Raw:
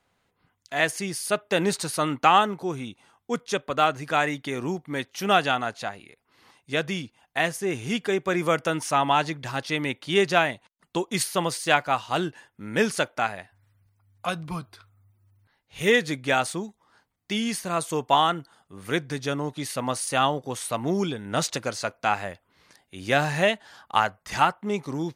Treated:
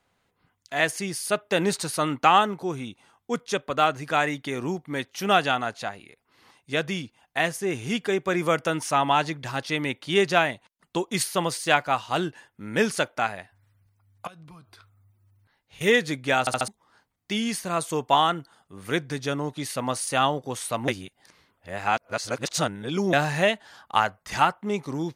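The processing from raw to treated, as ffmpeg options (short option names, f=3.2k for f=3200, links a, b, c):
-filter_complex "[0:a]asettb=1/sr,asplit=3[a][b][c];[a]atrim=end=14.274[d];[b]atrim=start=14.27:end=15.81,asetpts=PTS-STARTPTS,afade=t=in:d=0.004:c=qsin,afade=t=out:st=1.536:d=0.004:c=qsin,acompressor=threshold=-46dB:ratio=5:attack=3.2:release=140:knee=1:detection=peak[e];[c]atrim=start=15.806[f];[d][e]acrossfade=d=0.004:c1=hsin:c2=qsin[g];[g][f]acrossfade=d=0.004:c1=qsin:c2=hsin,asplit=7[h][i][j][k][l][m][n];[h]atrim=end=16.472[o];[i]atrim=start=16.398:end=16.472[p];[j]atrim=start=16.398:end=16.472[q];[k]atrim=start=16.398:end=16.472[r];[l]atrim=start=16.678:end=20.882[s];[m]atrim=start=20.878:end=23.132,asetpts=PTS-STARTPTS,areverse[t];[n]atrim=start=23.128[u];[o][p]acrossfade=d=0.004:c1=hsin:c2=hsin[v];[v][q]acrossfade=d=0.004:c1=hsin:c2=hsin[w];[w][r]acrossfade=d=0.004:c1=hsin:c2=hsin[x];[x][s]acrossfade=d=0.004:c1=hsin:c2=hsin[y];[y][t]acrossfade=d=0.004:c1=hsin:c2=hsin[z];[z][u]acrossfade=d=0.004:c1=hsin:c2=hsin"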